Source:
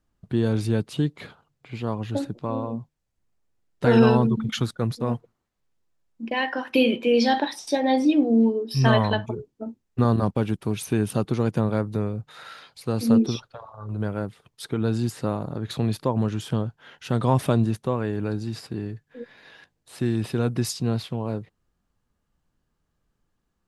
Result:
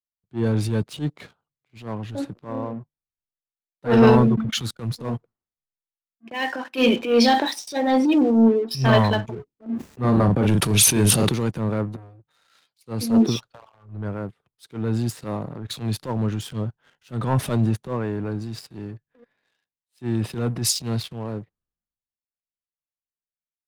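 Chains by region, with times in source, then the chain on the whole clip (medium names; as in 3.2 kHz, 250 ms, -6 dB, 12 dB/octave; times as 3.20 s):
9.66–11.29 s: high-pass 49 Hz + doubling 39 ms -9 dB + level flattener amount 70%
11.96–12.50 s: comb of notches 210 Hz + compression 2:1, threshold -41 dBFS + transformer saturation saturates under 330 Hz
whole clip: waveshaping leveller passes 2; transient shaper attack -10 dB, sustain +2 dB; three bands expanded up and down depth 70%; trim -5 dB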